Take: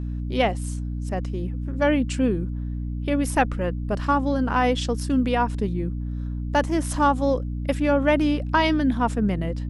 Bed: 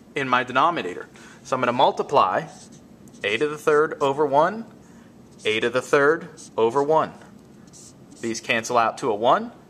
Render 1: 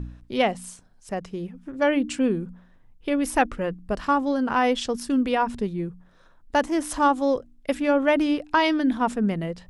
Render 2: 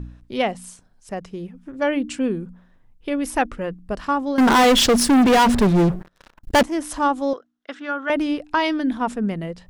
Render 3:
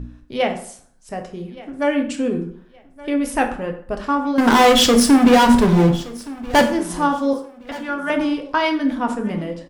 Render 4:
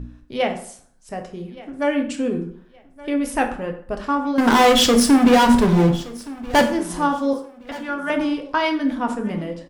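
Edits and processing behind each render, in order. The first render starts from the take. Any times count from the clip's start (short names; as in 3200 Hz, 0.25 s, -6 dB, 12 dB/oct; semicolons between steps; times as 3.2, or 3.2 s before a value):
de-hum 60 Hz, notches 5
4.38–6.63 sample leveller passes 5; 7.33–8.1 speaker cabinet 470–5600 Hz, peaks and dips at 550 Hz -10 dB, 880 Hz -5 dB, 1400 Hz +7 dB, 2400 Hz -9 dB, 4700 Hz -7 dB
feedback echo 1.171 s, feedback 28%, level -19.5 dB; plate-style reverb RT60 0.57 s, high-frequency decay 0.7×, DRR 4 dB
gain -1.5 dB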